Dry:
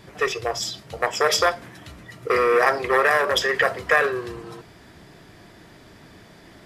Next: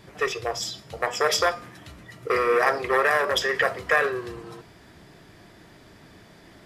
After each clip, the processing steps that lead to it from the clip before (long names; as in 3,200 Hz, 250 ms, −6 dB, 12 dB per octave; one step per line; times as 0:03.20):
hum removal 244.2 Hz, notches 29
level −2.5 dB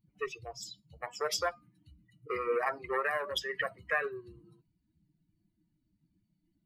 spectral dynamics exaggerated over time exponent 2
level −7 dB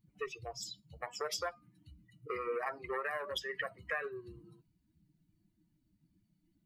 downward compressor 2 to 1, threshold −41 dBFS, peak gain reduction 9 dB
level +1.5 dB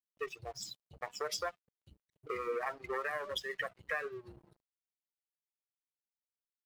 dead-zone distortion −57 dBFS
level +1 dB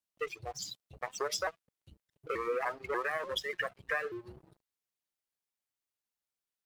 pitch modulation by a square or saw wave saw up 3.4 Hz, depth 160 cents
level +3 dB